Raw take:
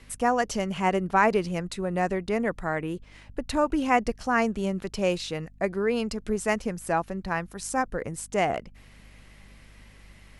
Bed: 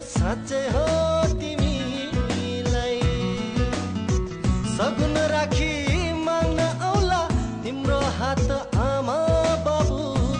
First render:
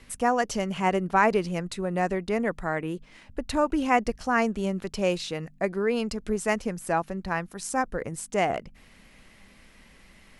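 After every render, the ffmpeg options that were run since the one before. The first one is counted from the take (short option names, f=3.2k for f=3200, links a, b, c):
-af "bandreject=f=50:t=h:w=4,bandreject=f=100:t=h:w=4,bandreject=f=150:t=h:w=4"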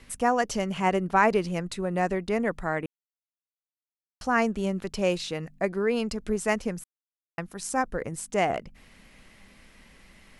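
-filter_complex "[0:a]asplit=5[a][b][c][d][e];[a]atrim=end=2.86,asetpts=PTS-STARTPTS,afade=t=out:st=2.856:d=0.004:c=hsin[f];[b]atrim=start=2.86:end=4.21,asetpts=PTS-STARTPTS,volume=0[g];[c]atrim=start=4.21:end=6.84,asetpts=PTS-STARTPTS,afade=t=in:d=0.004:c=hsin,afade=t=out:st=2.626:d=0.004:c=hsin[h];[d]atrim=start=6.84:end=7.38,asetpts=PTS-STARTPTS,volume=0[i];[e]atrim=start=7.38,asetpts=PTS-STARTPTS,afade=t=in:d=0.004:c=hsin[j];[f][g][h][i][j]concat=n=5:v=0:a=1"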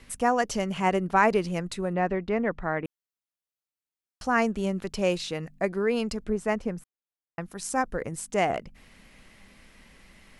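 -filter_complex "[0:a]asettb=1/sr,asplit=3[a][b][c];[a]atrim=end=1.934[d];[b]atrim=start=1.93:end=2.85,asetpts=PTS-STARTPTS,afade=t=in:d=0.004:c=qsin,afade=t=out:st=0.916:d=0.004:c=qsin,lowpass=2.9k[e];[c]atrim=start=2.846[f];[d][e]acrossfade=d=0.004:c1=hsin:c2=qsin[g];[g][f]acrossfade=d=0.004:c1=qsin:c2=hsin,asettb=1/sr,asplit=3[h][i][j];[h]atrim=end=6.244[k];[i]atrim=start=6.24:end=7.41,asetpts=PTS-STARTPTS,afade=t=in:d=0.004:c=qsin,afade=t=out:st=1.166:d=0.004:c=qsin,highshelf=f=2.6k:g=-11.5[l];[j]atrim=start=7.406[m];[k][l]acrossfade=d=0.004:c1=hsin:c2=qsin[n];[n][m]acrossfade=d=0.004:c1=qsin:c2=hsin"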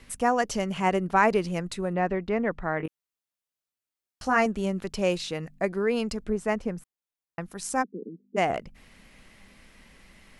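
-filter_complex "[0:a]asettb=1/sr,asplit=3[a][b][c];[a]atrim=end=2.784[d];[b]atrim=start=2.78:end=4.46,asetpts=PTS-STARTPTS,afade=t=in:d=0.004:c=qsin,afade=t=out:st=1.676:d=0.004:c=qsin,asplit=2[e][f];[f]adelay=19,volume=-5dB[g];[e][g]amix=inputs=2:normalize=0,atrim=end_sample=74088[h];[c]atrim=start=4.456[i];[d][h]acrossfade=d=0.004:c1=hsin:c2=qsin[j];[j][i]acrossfade=d=0.004:c1=qsin:c2=hsin,asplit=3[k][l][m];[k]afade=t=out:st=7.82:d=0.02[n];[l]asuperpass=centerf=280:order=12:qfactor=1.1,afade=t=in:st=7.82:d=0.02,afade=t=out:st=8.36:d=0.02[o];[m]afade=t=in:st=8.36:d=0.02[p];[n][o][p]amix=inputs=3:normalize=0"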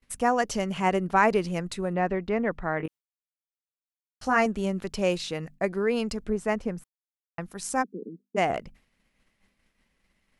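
-af "agate=range=-33dB:threshold=-41dB:ratio=3:detection=peak"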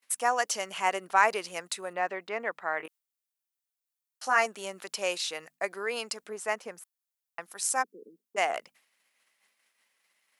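-af "highpass=710,highshelf=f=6.6k:g=9.5"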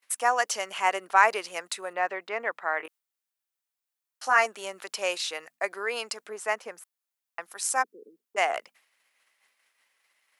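-af "highpass=270,equalizer=f=1.4k:w=0.5:g=3.5"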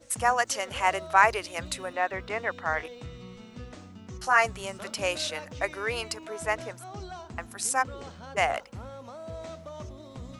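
-filter_complex "[1:a]volume=-19.5dB[a];[0:a][a]amix=inputs=2:normalize=0"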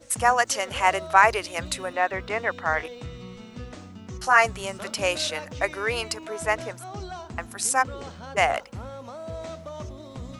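-af "volume=4dB,alimiter=limit=-3dB:level=0:latency=1"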